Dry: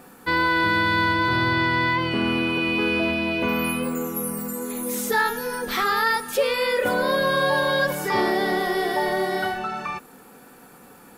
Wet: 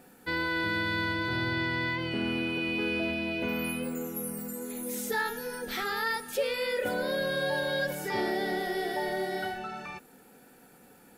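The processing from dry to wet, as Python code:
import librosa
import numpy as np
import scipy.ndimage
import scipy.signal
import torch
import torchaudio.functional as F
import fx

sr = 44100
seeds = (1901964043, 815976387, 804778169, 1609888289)

y = fx.peak_eq(x, sr, hz=1100.0, db=-14.0, octaves=0.27)
y = F.gain(torch.from_numpy(y), -7.5).numpy()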